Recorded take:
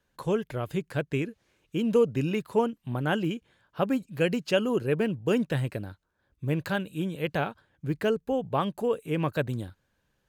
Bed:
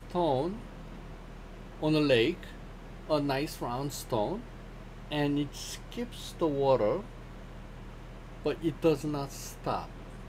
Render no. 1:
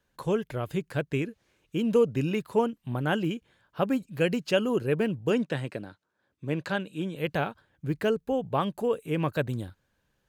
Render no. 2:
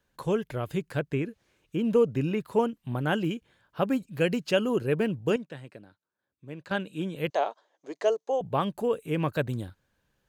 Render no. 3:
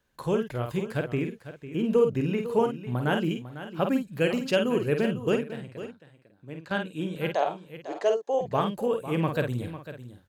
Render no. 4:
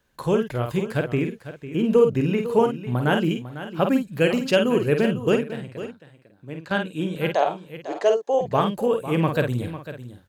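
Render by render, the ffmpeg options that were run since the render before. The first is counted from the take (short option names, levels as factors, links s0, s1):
-filter_complex "[0:a]asplit=3[s0][s1][s2];[s0]afade=t=out:st=5.3:d=0.02[s3];[s1]highpass=170,lowpass=7900,afade=t=in:st=5.3:d=0.02,afade=t=out:st=7.15:d=0.02[s4];[s2]afade=t=in:st=7.15:d=0.02[s5];[s3][s4][s5]amix=inputs=3:normalize=0"
-filter_complex "[0:a]asettb=1/sr,asplit=3[s0][s1][s2];[s0]atrim=end=0.994[s3];[s1]atrim=start=0.99:end=2.59,asetpts=PTS-STARTPTS,afade=t=in:d=0.004:c=qsin,afade=t=out:st=1.596:d=0.004:c=qsin,acrossover=split=2500[s4][s5];[s5]acompressor=threshold=0.00355:ratio=4:attack=1:release=60[s6];[s4][s6]amix=inputs=2:normalize=0[s7];[s2]atrim=start=2.586[s8];[s3][s7]acrossfade=d=0.004:c1=hsin:c2=qsin[s9];[s9][s8]acrossfade=d=0.004:c1=qsin:c2=hsin,asettb=1/sr,asplit=3[s10][s11][s12];[s10]atrim=end=7.304[s13];[s11]atrim=start=7.3:end=8.41,asetpts=PTS-STARTPTS,afade=t=in:d=0.004:c=qsin,afade=t=out:st=1.106:d=0.004:c=qsin,highpass=f=390:w=0.5412,highpass=f=390:w=1.3066,equalizer=f=660:t=q:w=4:g=8,equalizer=f=1000:t=q:w=4:g=4,equalizer=f=1500:t=q:w=4:g=-9,equalizer=f=2500:t=q:w=4:g=-7,equalizer=f=6300:t=q:w=4:g=10,lowpass=f=7200:w=0.5412,lowpass=f=7200:w=1.3066[s14];[s12]atrim=start=8.406[s15];[s13][s14]acrossfade=d=0.004:c1=hsin:c2=qsin[s16];[s16][s15]acrossfade=d=0.004:c1=qsin:c2=hsin,asplit=3[s17][s18][s19];[s17]atrim=end=5.362[s20];[s18]atrim=start=5.358:end=6.712,asetpts=PTS-STARTPTS,volume=0.282[s21];[s19]atrim=start=6.708[s22];[s20][s21]acrossfade=d=0.004:c1=hsin:c2=hsin[s23];[s23][s22]acrossfade=d=0.004:c1=hsin:c2=hsin"
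-filter_complex "[0:a]asplit=2[s0][s1];[s1]adelay=49,volume=0.501[s2];[s0][s2]amix=inputs=2:normalize=0,aecho=1:1:500:0.224"
-af "volume=1.78"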